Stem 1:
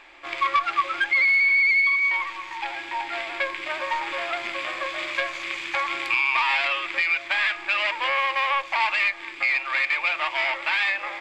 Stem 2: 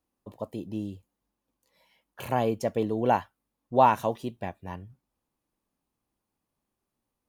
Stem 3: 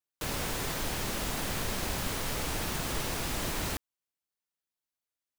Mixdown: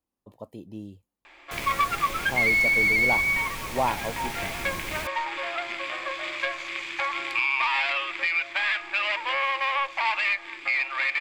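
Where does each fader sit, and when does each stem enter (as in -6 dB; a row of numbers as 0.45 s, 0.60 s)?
-2.5 dB, -5.5 dB, -3.5 dB; 1.25 s, 0.00 s, 1.30 s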